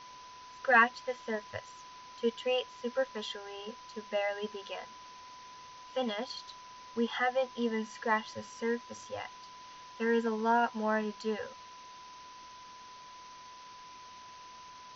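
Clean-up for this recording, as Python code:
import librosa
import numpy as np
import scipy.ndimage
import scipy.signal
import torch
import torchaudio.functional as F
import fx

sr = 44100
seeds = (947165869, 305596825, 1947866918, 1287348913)

y = fx.notch(x, sr, hz=1000.0, q=30.0)
y = fx.noise_reduce(y, sr, print_start_s=12.63, print_end_s=13.13, reduce_db=27.0)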